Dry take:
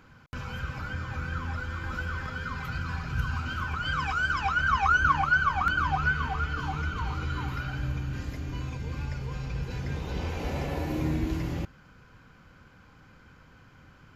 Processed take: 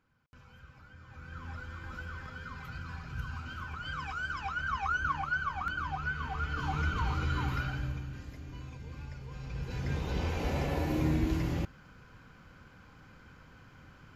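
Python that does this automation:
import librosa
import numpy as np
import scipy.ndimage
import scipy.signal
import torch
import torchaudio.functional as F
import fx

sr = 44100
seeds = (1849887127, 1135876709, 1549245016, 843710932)

y = fx.gain(x, sr, db=fx.line((0.95, -19.5), (1.49, -9.0), (6.07, -9.0), (6.82, 0.0), (7.6, 0.0), (8.2, -10.0), (9.26, -10.0), (9.91, -0.5)))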